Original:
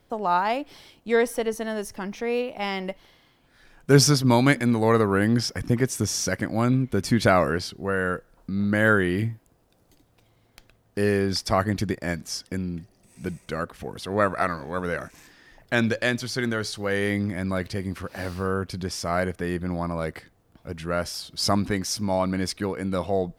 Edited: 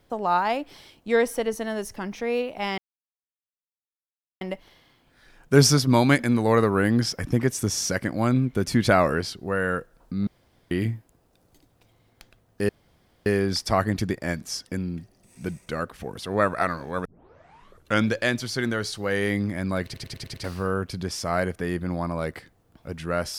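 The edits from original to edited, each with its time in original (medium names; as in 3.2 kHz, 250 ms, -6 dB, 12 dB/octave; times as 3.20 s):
2.78 s: insert silence 1.63 s
8.64–9.08 s: room tone
11.06 s: insert room tone 0.57 s
14.85 s: tape start 1.02 s
17.64 s: stutter in place 0.10 s, 6 plays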